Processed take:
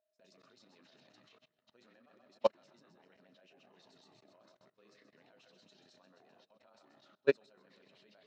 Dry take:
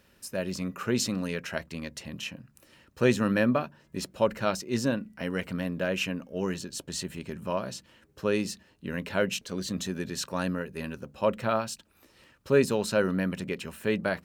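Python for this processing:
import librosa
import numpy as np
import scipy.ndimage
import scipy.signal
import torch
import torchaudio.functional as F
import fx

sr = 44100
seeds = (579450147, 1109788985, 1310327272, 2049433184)

y = fx.echo_pitch(x, sr, ms=110, semitones=-6, count=3, db_per_echo=-6.0)
y = fx.cabinet(y, sr, low_hz=140.0, low_slope=24, high_hz=6100.0, hz=(160.0, 700.0, 3900.0), db=(-5, 7, 7))
y = fx.doubler(y, sr, ms=43.0, db=-13)
y = fx.echo_split(y, sr, split_hz=450.0, low_ms=340, high_ms=225, feedback_pct=52, wet_db=-10)
y = y + 10.0 ** (-43.0 / 20.0) * np.sin(2.0 * np.pi * 630.0 * np.arange(len(y)) / sr)
y = fx.low_shelf(y, sr, hz=210.0, db=-10.5)
y = fx.level_steps(y, sr, step_db=20)
y = fx.stretch_grains(y, sr, factor=0.58, grain_ms=64.0)
y = fx.upward_expand(y, sr, threshold_db=-37.0, expansion=2.5)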